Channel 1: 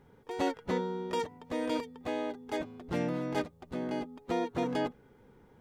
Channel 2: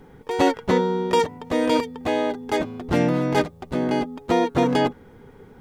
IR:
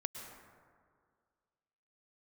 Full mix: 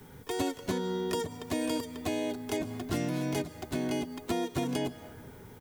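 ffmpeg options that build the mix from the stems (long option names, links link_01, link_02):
-filter_complex "[0:a]acompressor=threshold=-37dB:ratio=2,crystalizer=i=8:c=0,volume=-1.5dB,asplit=2[link_01][link_02];[link_02]volume=-5.5dB[link_03];[1:a]equalizer=frequency=99:width_type=o:width=1.4:gain=10,adelay=2.7,volume=-7.5dB[link_04];[2:a]atrim=start_sample=2205[link_05];[link_03][link_05]afir=irnorm=-1:irlink=0[link_06];[link_01][link_04][link_06]amix=inputs=3:normalize=0,acrossover=split=86|620|2600|7100[link_07][link_08][link_09][link_10][link_11];[link_07]acompressor=threshold=-56dB:ratio=4[link_12];[link_08]acompressor=threshold=-30dB:ratio=4[link_13];[link_09]acompressor=threshold=-42dB:ratio=4[link_14];[link_10]acompressor=threshold=-45dB:ratio=4[link_15];[link_11]acompressor=threshold=-45dB:ratio=4[link_16];[link_12][link_13][link_14][link_15][link_16]amix=inputs=5:normalize=0"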